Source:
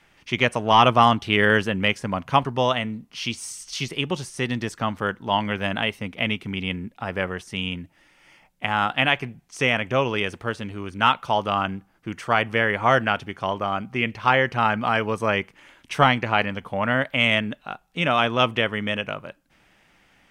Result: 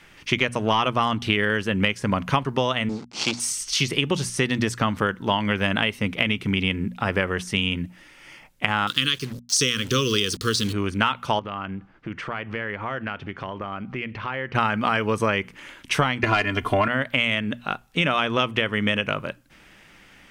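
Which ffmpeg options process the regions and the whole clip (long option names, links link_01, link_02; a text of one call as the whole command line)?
ffmpeg -i in.wav -filter_complex "[0:a]asettb=1/sr,asplit=3[link_01][link_02][link_03];[link_01]atrim=end=2.894[link_04];[link_02]atrim=start=2.89:end=3.4,asetpts=PTS-STARTPTS,afade=type=in:duration=0.004:curve=qsin,afade=type=out:start_time=0.506:duration=0.004:curve=qsin,acrusher=bits=5:dc=4:mix=0:aa=0.000001,highpass=140,equalizer=frequency=290:width_type=q:width=4:gain=4,equalizer=frequency=820:width_type=q:width=4:gain=8,equalizer=frequency=1800:width_type=q:width=4:gain=-7,equalizer=frequency=3000:width_type=q:width=4:gain=-6,equalizer=frequency=4500:width_type=q:width=4:gain=4,lowpass=frequency=7100:width=0.5412,lowpass=frequency=7100:width=1.3066[link_05];[link_03]atrim=start=3.396[link_06];[link_04][link_05]acrossfade=duration=0.004:curve1=hsin:curve2=qsin[link_07];[link_07][link_06]acrossfade=duration=0.004:curve1=qsin:curve2=hsin,asettb=1/sr,asplit=3[link_08][link_09][link_10];[link_08]atrim=end=8.874[link_11];[link_09]atrim=start=8.87:end=10.73,asetpts=PTS-STARTPTS,afade=type=in:duration=0.004:curve=qsin,afade=type=out:start_time=1.856:duration=0.004:curve=qsin,asuperstop=centerf=740:order=12:qfactor=1.3,highshelf=frequency=3100:width_type=q:width=3:gain=11.5,acrusher=bits=6:mix=0:aa=0.5[link_12];[link_10]atrim=start=10.726[link_13];[link_11][link_12]acrossfade=duration=0.004:curve1=hsin:curve2=qsin[link_14];[link_14][link_13]acrossfade=duration=0.004:curve1=qsin:curve2=hsin,asettb=1/sr,asplit=3[link_15][link_16][link_17];[link_15]atrim=end=11.394[link_18];[link_16]atrim=start=11.39:end=14.55,asetpts=PTS-STARTPTS,afade=type=in:duration=0.004:curve=qsin,afade=type=out:start_time=3.156:duration=0.004:curve=qsin,lowpass=3000,acompressor=threshold=-38dB:ratio=3:attack=3.2:release=140:knee=1:detection=peak[link_19];[link_17]atrim=start=14.546[link_20];[link_18][link_19]acrossfade=duration=0.004:curve1=hsin:curve2=qsin[link_21];[link_21][link_20]acrossfade=duration=0.004:curve1=qsin:curve2=hsin,asettb=1/sr,asplit=3[link_22][link_23][link_24];[link_22]atrim=end=16.234[link_25];[link_23]atrim=start=16.23:end=16.88,asetpts=PTS-STARTPTS,afade=type=in:duration=0.004:curve=qsin,afade=type=out:start_time=0.646:duration=0.004:curve=qsin,aecho=1:1:2.9:0.99,atrim=end_sample=28665,acontrast=73[link_26];[link_24]atrim=start=16.876[link_27];[link_25][link_26]acrossfade=duration=0.004:curve1=hsin:curve2=qsin[link_28];[link_28][link_27]acrossfade=duration=0.004:curve1=qsin:curve2=hsin,equalizer=frequency=750:width_type=o:width=0.73:gain=-5.5,bandreject=frequency=60:width_type=h:width=6,bandreject=frequency=120:width_type=h:width=6,bandreject=frequency=180:width_type=h:width=6,bandreject=frequency=240:width_type=h:width=6,acompressor=threshold=-26dB:ratio=12,volume=8.5dB" out.wav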